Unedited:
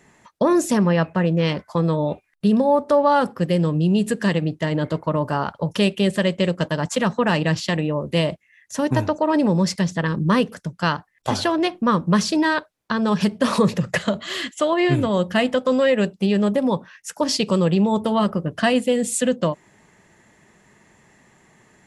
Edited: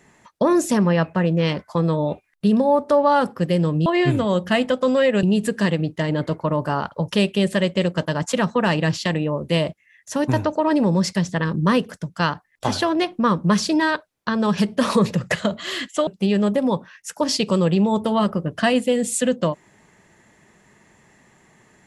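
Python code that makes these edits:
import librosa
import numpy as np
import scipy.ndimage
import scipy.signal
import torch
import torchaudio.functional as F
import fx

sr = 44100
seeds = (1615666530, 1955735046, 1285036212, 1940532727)

y = fx.edit(x, sr, fx.move(start_s=14.7, length_s=1.37, to_s=3.86), tone=tone)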